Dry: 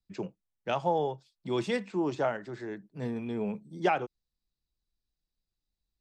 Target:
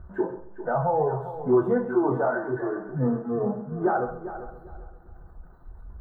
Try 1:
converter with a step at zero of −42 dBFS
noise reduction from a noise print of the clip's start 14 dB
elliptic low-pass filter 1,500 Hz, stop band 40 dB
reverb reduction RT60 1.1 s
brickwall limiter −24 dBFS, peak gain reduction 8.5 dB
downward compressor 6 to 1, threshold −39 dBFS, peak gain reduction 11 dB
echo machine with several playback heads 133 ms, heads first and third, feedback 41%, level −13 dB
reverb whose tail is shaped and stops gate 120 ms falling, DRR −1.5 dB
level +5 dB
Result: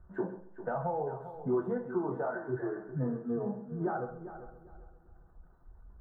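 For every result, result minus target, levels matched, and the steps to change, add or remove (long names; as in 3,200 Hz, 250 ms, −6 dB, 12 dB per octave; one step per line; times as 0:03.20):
downward compressor: peak gain reduction +11 dB; converter with a step at zero: distortion −9 dB
remove: downward compressor 6 to 1, threshold −39 dBFS, peak gain reduction 11 dB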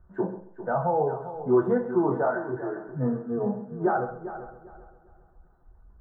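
converter with a step at zero: distortion −9 dB
change: converter with a step at zero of −31.5 dBFS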